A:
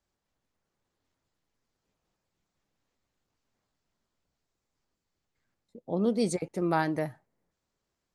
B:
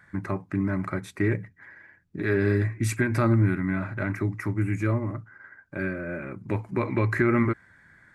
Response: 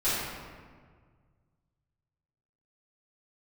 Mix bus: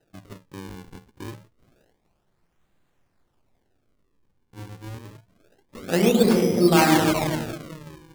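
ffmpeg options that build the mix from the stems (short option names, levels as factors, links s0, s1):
-filter_complex "[0:a]volume=1.33,asplit=2[s0][s1];[s1]volume=0.501[s2];[1:a]lowpass=f=8700:w=0.5412,lowpass=f=8700:w=1.3066,volume=0.237,asplit=3[s3][s4][s5];[s3]atrim=end=1.93,asetpts=PTS-STARTPTS,afade=t=out:st=1.926:d=0.004:c=hsin[s6];[s4]atrim=start=1.93:end=4.53,asetpts=PTS-STARTPTS,volume=0[s7];[s5]atrim=start=4.53,asetpts=PTS-STARTPTS,afade=t=in:d=0.004:c=hsin[s8];[s6][s7][s8]concat=n=3:v=0:a=1[s9];[2:a]atrim=start_sample=2205[s10];[s2][s10]afir=irnorm=-1:irlink=0[s11];[s0][s9][s11]amix=inputs=3:normalize=0,acrusher=samples=39:mix=1:aa=0.000001:lfo=1:lforange=62.4:lforate=0.27"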